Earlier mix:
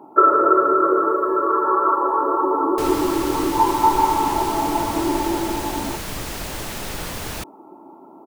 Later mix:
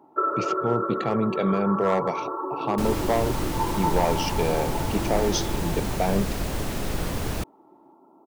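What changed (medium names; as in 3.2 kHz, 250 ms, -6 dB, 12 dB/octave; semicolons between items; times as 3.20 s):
speech: unmuted; first sound -11.0 dB; second sound: add tilt shelf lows +5 dB, about 730 Hz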